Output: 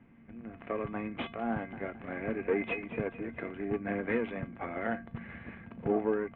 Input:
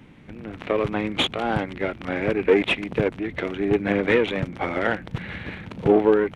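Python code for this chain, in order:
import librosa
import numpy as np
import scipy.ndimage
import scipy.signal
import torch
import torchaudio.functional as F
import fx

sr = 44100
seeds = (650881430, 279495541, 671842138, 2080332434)

y = scipy.signal.sosfilt(scipy.signal.butter(4, 2300.0, 'lowpass', fs=sr, output='sos'), x)
y = fx.comb_fb(y, sr, f0_hz=230.0, decay_s=0.21, harmonics='odd', damping=0.0, mix_pct=80)
y = fx.echo_warbled(y, sr, ms=217, feedback_pct=43, rate_hz=2.8, cents=73, wet_db=-12.0, at=(1.51, 3.64))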